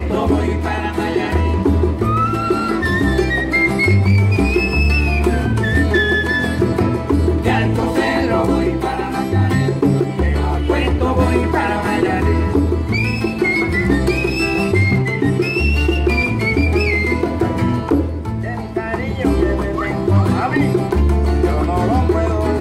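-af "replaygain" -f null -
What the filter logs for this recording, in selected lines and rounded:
track_gain = -0.7 dB
track_peak = 0.326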